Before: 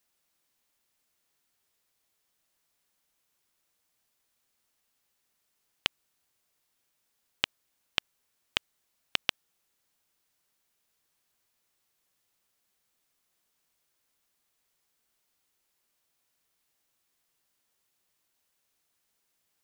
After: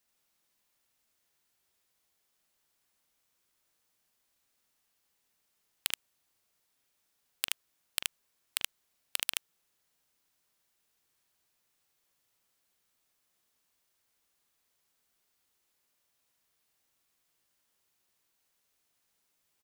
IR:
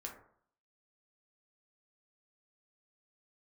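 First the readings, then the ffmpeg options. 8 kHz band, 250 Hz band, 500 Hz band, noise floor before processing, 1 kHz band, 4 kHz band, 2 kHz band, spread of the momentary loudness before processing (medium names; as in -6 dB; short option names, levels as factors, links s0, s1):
+11.0 dB, -11.5 dB, -10.0 dB, -78 dBFS, -7.0 dB, -4.0 dB, -5.0 dB, 3 LU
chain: -af "aecho=1:1:43|76:0.211|0.708,aeval=exprs='(mod(2.37*val(0)+1,2)-1)/2.37':c=same,volume=0.794"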